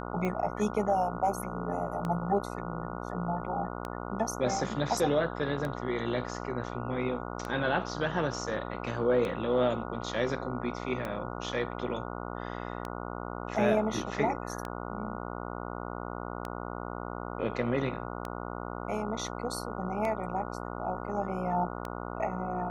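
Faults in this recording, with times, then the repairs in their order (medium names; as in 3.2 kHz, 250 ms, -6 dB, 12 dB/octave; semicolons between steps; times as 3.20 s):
buzz 60 Hz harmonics 24 -38 dBFS
tick 33 1/3 rpm -21 dBFS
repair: de-click; de-hum 60 Hz, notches 24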